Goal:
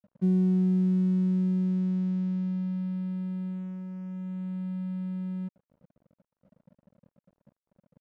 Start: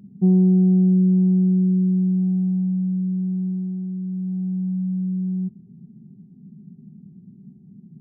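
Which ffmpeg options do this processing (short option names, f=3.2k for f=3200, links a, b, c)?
-af "aeval=exprs='sgn(val(0))*max(abs(val(0))-0.00891,0)':c=same,volume=-8dB"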